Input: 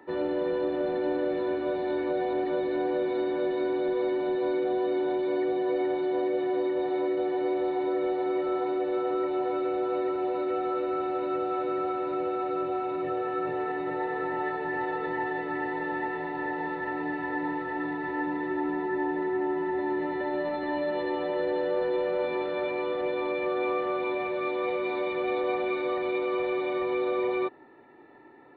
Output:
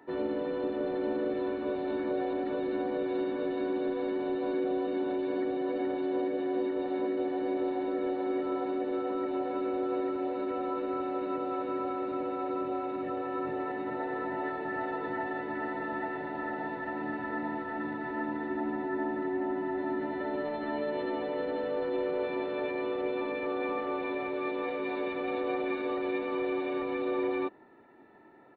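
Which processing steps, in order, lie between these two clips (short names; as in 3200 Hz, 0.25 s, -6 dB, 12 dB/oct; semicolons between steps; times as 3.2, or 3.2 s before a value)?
harmoniser -5 st -6 dB; gain -4.5 dB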